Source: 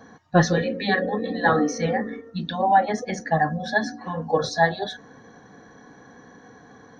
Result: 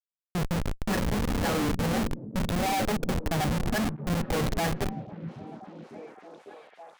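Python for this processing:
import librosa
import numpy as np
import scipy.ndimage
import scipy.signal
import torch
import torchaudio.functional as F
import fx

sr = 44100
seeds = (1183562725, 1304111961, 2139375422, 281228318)

y = fx.fade_in_head(x, sr, length_s=1.42)
y = fx.peak_eq(y, sr, hz=140.0, db=4.0, octaves=2.5)
y = fx.schmitt(y, sr, flips_db=-23.5)
y = fx.echo_stepped(y, sr, ms=551, hz=160.0, octaves=0.7, feedback_pct=70, wet_db=-7.0)
y = y * librosa.db_to_amplitude(-2.0)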